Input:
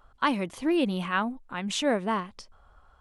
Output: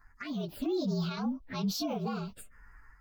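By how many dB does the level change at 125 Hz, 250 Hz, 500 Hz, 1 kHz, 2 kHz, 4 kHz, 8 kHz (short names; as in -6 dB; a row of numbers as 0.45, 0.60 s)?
+1.5, -4.5, -7.0, -12.0, -14.5, -6.0, -6.0 dB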